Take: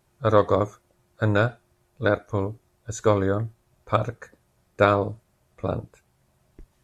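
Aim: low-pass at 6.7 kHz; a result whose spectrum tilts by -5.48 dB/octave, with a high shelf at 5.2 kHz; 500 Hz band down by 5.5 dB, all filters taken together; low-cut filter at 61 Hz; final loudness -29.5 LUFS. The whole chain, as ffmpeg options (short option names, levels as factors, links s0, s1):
-af "highpass=61,lowpass=6700,equalizer=f=500:t=o:g=-6.5,highshelf=f=5200:g=6.5,volume=0.75"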